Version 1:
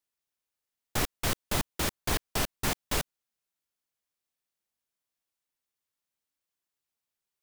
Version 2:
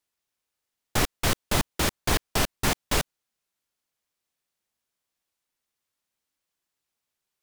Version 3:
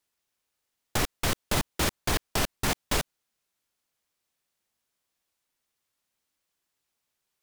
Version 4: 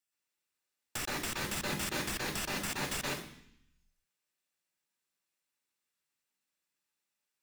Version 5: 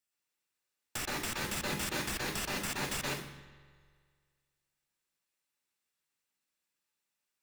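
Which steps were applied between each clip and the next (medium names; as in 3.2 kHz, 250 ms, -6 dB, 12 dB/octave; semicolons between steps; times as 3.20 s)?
treble shelf 12 kHz -5 dB; trim +5.5 dB
peak limiter -18 dBFS, peak gain reduction 7.5 dB; trim +2.5 dB
reverberation RT60 0.65 s, pre-delay 121 ms, DRR -3.5 dB; trim -8.5 dB
spring tank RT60 1.9 s, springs 43 ms, chirp 40 ms, DRR 13 dB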